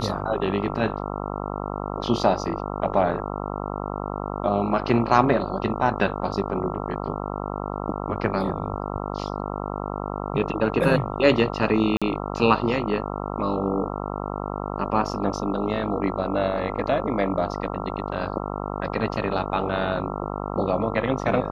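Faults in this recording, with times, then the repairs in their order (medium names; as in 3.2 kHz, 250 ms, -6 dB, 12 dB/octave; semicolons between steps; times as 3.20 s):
buzz 50 Hz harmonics 27 -30 dBFS
11.97–12.02 s: dropout 46 ms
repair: de-hum 50 Hz, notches 27; interpolate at 11.97 s, 46 ms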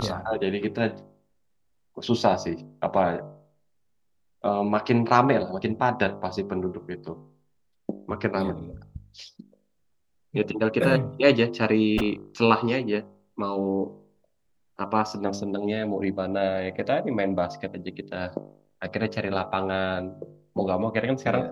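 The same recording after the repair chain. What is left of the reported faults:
nothing left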